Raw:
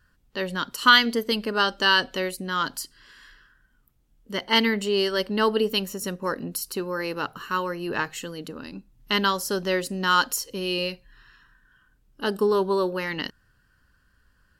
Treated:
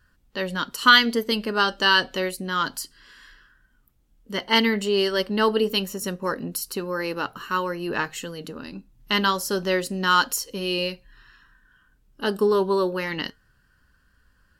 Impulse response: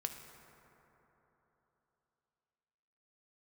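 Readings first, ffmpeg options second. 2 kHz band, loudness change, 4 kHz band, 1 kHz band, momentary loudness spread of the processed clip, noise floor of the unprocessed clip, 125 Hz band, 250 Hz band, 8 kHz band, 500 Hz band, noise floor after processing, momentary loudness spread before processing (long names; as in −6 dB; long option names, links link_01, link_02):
+1.5 dB, +1.0 dB, +1.0 dB, +1.0 dB, 13 LU, −65 dBFS, +1.5 dB, +1.5 dB, +1.0 dB, +1.5 dB, −63 dBFS, 13 LU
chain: -af "flanger=delay=3.1:depth=3.1:regen=-77:speed=0.27:shape=triangular,volume=5.5dB"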